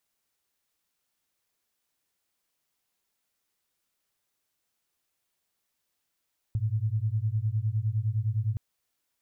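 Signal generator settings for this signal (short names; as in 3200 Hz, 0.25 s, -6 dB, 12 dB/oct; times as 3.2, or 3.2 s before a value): beating tones 104 Hz, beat 9.8 Hz, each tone -28 dBFS 2.02 s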